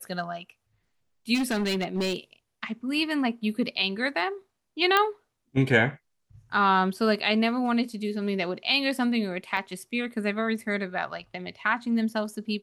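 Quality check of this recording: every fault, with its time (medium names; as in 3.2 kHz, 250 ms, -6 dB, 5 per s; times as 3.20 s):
1.34–2.16 s: clipped -23 dBFS
4.97 s: pop -8 dBFS
9.57 s: dropout 3.6 ms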